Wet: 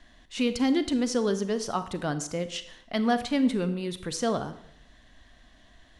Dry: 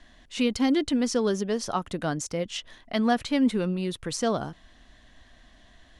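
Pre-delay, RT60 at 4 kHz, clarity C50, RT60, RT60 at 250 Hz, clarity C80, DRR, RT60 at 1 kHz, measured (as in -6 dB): 32 ms, 0.65 s, 12.5 dB, 0.75 s, 0.85 s, 15.5 dB, 11.0 dB, 0.70 s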